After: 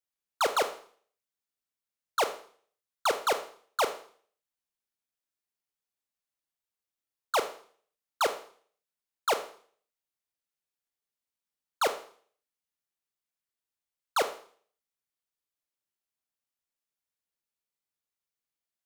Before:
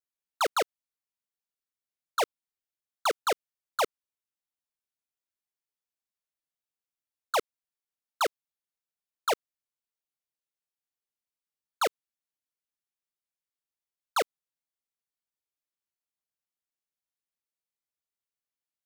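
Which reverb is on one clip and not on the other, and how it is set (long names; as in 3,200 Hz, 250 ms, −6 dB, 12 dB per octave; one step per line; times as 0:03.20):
four-comb reverb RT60 0.5 s, combs from 27 ms, DRR 8.5 dB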